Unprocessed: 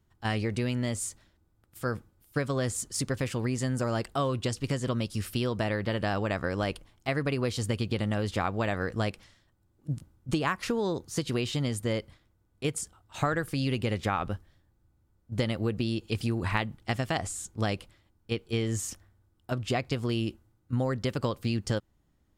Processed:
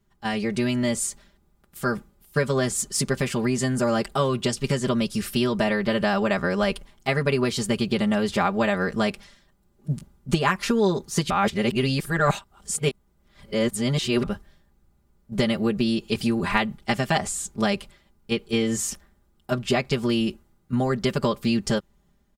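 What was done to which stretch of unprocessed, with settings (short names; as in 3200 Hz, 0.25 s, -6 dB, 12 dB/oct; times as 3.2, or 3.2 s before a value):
11.3–14.23 reverse
whole clip: comb 5 ms, depth 96%; AGC gain up to 4.5 dB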